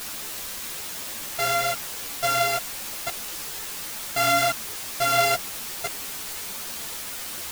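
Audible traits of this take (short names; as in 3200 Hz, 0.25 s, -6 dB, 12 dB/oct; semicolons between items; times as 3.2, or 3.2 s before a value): a buzz of ramps at a fixed pitch in blocks of 64 samples; tremolo triangle 1 Hz, depth 35%; a quantiser's noise floor 6-bit, dither triangular; a shimmering, thickened sound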